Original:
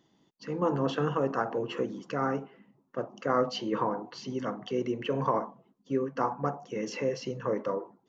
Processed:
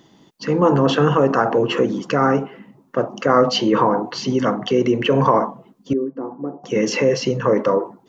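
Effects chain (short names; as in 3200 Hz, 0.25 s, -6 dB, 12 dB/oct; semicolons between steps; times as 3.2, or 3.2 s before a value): in parallel at +2.5 dB: limiter -25.5 dBFS, peak gain reduction 11.5 dB; 5.93–6.64 on the sum: band-pass 320 Hz, Q 3.9; gain +8.5 dB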